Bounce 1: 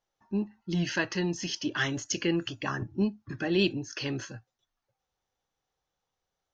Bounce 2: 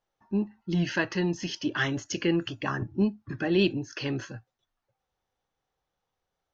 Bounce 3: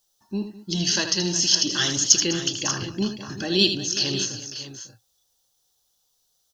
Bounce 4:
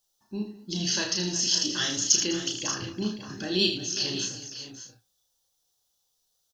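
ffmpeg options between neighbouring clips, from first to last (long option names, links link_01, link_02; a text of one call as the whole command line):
ffmpeg -i in.wav -af "aemphasis=mode=reproduction:type=50kf,volume=2.5dB" out.wav
ffmpeg -i in.wav -af "aexciter=amount=10.6:drive=6.2:freq=3400,aecho=1:1:79|204|364|550|587:0.376|0.133|0.168|0.2|0.224,volume=-1dB" out.wav
ffmpeg -i in.wav -filter_complex "[0:a]flanger=delay=1.6:depth=7.3:regen=-84:speed=1.1:shape=sinusoidal,asplit=2[link_01][link_02];[link_02]adelay=33,volume=-4.5dB[link_03];[link_01][link_03]amix=inputs=2:normalize=0,volume=-1.5dB" out.wav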